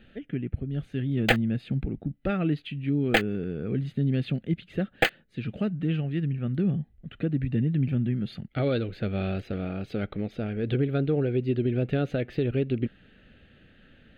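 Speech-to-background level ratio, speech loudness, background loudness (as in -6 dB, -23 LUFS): -1.5 dB, -29.0 LUFS, -27.5 LUFS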